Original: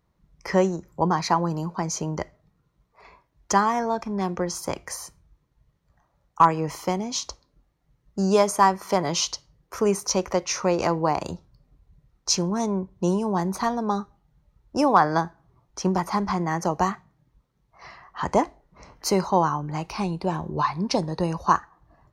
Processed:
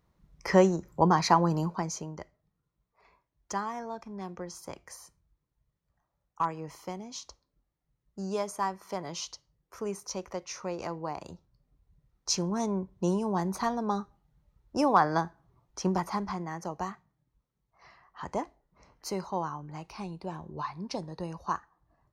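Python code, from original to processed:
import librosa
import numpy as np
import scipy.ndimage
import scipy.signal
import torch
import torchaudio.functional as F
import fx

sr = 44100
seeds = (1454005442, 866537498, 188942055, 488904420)

y = fx.gain(x, sr, db=fx.line((1.64, -0.5), (2.16, -13.0), (11.24, -13.0), (12.56, -5.0), (15.97, -5.0), (16.54, -12.0)))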